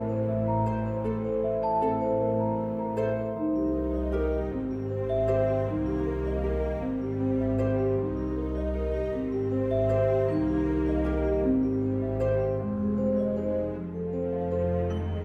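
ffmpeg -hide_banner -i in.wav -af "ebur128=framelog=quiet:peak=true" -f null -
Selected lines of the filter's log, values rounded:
Integrated loudness:
  I:         -27.9 LUFS
  Threshold: -37.9 LUFS
Loudness range:
  LRA:         2.2 LU
  Threshold: -47.8 LUFS
  LRA low:   -28.7 LUFS
  LRA high:  -26.5 LUFS
True peak:
  Peak:      -14.1 dBFS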